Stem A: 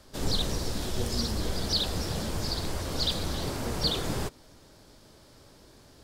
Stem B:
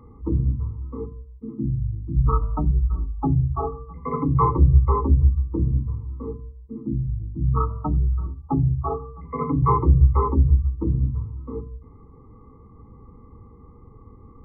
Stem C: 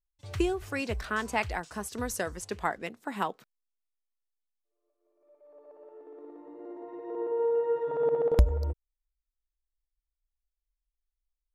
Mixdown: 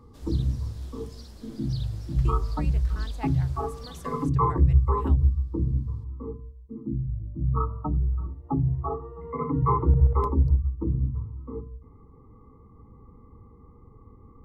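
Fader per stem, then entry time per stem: −18.5, −4.0, −13.5 decibels; 0.00, 0.00, 1.85 seconds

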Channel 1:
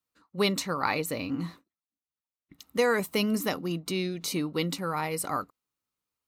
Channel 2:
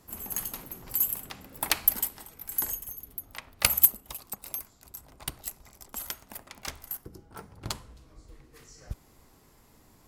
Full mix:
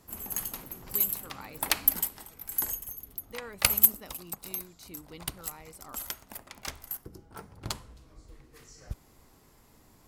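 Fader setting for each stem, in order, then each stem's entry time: −18.5, −0.5 decibels; 0.55, 0.00 seconds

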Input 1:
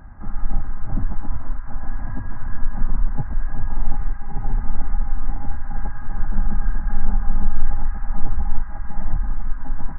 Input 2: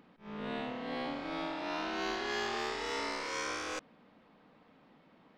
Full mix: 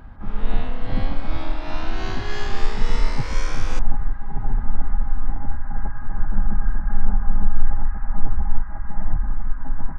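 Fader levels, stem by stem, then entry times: 0.0, +3.0 decibels; 0.00, 0.00 seconds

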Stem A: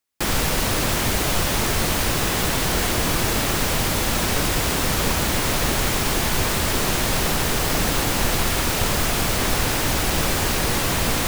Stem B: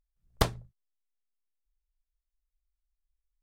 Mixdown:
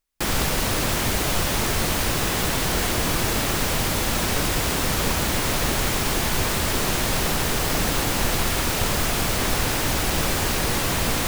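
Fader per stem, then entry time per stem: −1.5, −5.0 decibels; 0.00, 0.00 seconds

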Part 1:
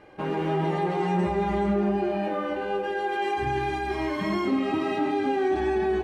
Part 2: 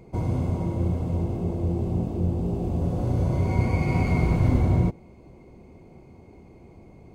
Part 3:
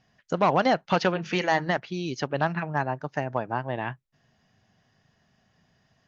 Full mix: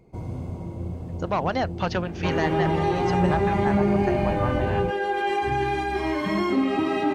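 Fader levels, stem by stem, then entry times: +2.5, −7.0, −3.5 decibels; 2.05, 0.00, 0.90 seconds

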